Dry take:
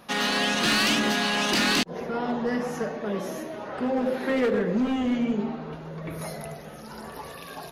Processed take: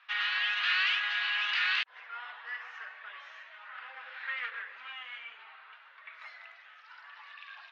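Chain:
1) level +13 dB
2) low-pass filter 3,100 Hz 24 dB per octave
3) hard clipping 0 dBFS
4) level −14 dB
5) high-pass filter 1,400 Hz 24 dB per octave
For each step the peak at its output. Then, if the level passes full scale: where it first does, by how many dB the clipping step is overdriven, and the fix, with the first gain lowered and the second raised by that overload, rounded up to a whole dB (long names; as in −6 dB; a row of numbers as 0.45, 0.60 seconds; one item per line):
−5.5, −3.5, −3.5, −17.5, −17.5 dBFS
no step passes full scale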